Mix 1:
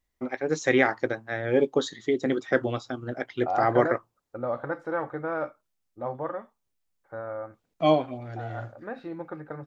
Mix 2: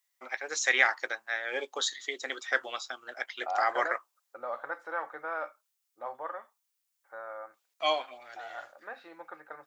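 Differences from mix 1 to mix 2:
first voice: add tilt +2.5 dB/oct; master: add HPF 890 Hz 12 dB/oct

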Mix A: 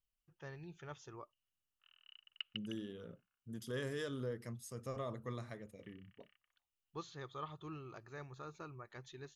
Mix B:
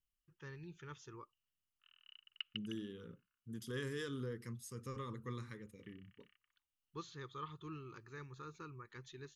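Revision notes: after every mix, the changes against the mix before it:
master: add Butterworth band-stop 670 Hz, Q 1.4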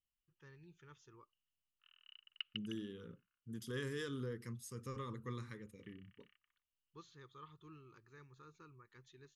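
first voice -9.0 dB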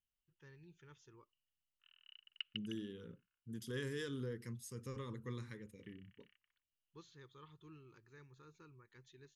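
master: add bell 1200 Hz -7 dB 0.31 oct

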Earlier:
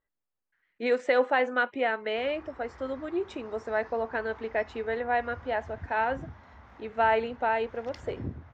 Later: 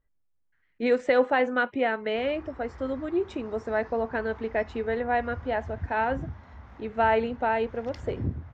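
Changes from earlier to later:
speech: add low shelf 160 Hz +8 dB; master: add low shelf 230 Hz +8.5 dB

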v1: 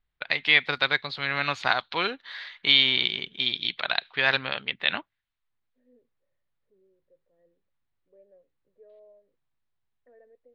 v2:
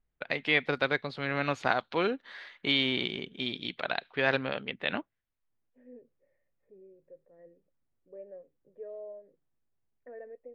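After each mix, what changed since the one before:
first voice: add ten-band EQ 250 Hz +5 dB, 500 Hz +4 dB, 1000 Hz -4 dB, 2000 Hz -4 dB, 4000 Hz -11 dB; second voice +11.0 dB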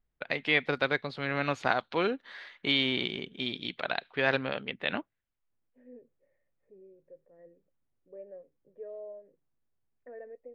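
none

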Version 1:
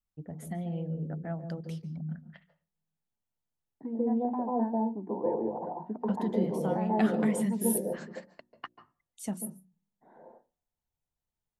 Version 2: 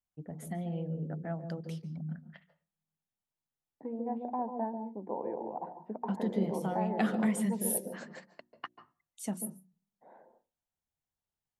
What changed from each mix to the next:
second voice: send -10.0 dB; master: add low shelf 68 Hz -12 dB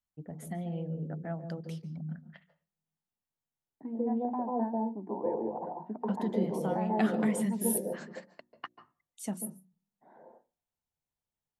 second voice: send +8.0 dB

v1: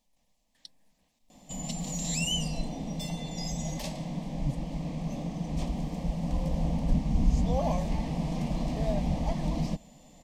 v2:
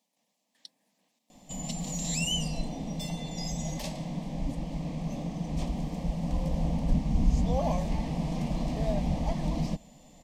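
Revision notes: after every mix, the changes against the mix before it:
speech: add HPF 190 Hz 24 dB/oct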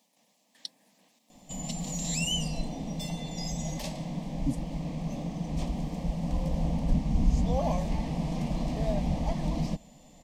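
speech +9.0 dB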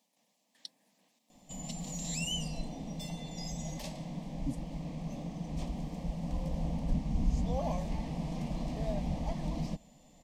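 speech -6.5 dB; background -5.5 dB

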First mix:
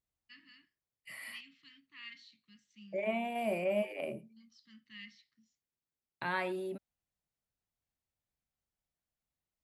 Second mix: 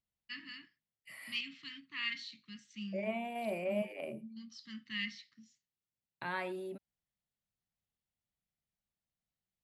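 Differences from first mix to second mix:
first voice +11.5 dB; second voice -3.5 dB

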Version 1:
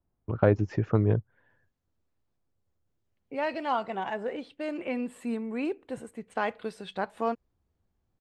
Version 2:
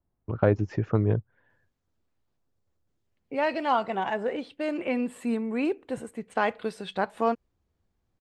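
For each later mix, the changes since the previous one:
second voice +4.0 dB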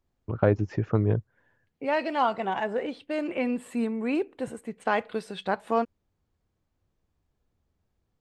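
second voice: entry -1.50 s

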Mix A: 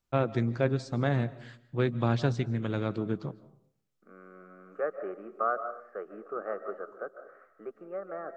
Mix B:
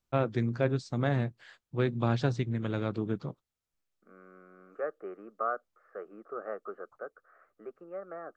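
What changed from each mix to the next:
reverb: off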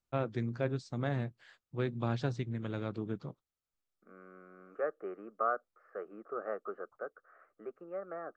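first voice -5.5 dB

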